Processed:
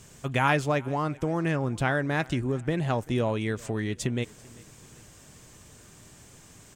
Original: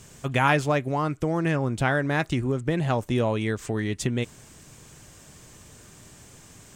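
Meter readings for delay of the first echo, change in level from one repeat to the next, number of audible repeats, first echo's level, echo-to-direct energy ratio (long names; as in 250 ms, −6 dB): 390 ms, −6.0 dB, 2, −24.0 dB, −23.0 dB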